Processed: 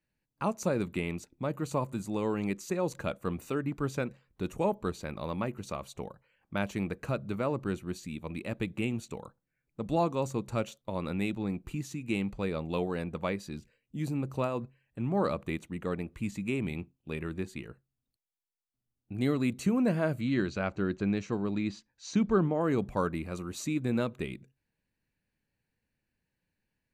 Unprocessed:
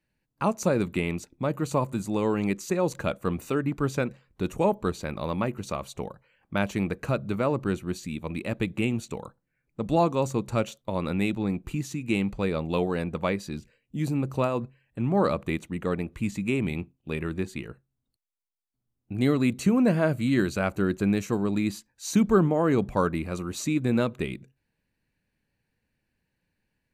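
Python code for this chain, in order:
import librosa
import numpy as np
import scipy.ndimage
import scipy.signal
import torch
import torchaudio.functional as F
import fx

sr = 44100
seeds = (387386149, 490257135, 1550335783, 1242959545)

y = fx.lowpass(x, sr, hz=5900.0, slope=24, at=(20.21, 22.61))
y = y * 10.0 ** (-5.5 / 20.0)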